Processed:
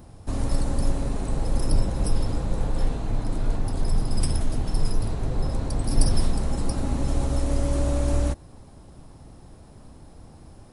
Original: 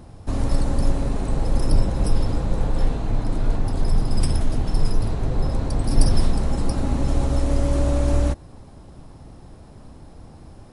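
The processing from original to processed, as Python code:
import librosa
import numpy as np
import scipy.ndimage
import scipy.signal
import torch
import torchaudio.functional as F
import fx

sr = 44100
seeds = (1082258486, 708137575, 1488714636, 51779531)

y = fx.high_shelf(x, sr, hz=9200.0, db=10.0)
y = y * 10.0 ** (-3.5 / 20.0)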